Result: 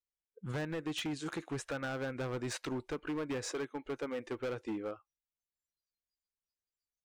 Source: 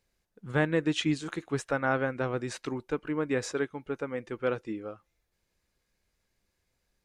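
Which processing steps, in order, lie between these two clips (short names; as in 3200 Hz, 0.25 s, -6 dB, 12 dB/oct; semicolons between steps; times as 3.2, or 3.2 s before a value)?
spectral noise reduction 30 dB; compressor 10:1, threshold -31 dBFS, peak gain reduction 11 dB; overloaded stage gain 34 dB; gain +1 dB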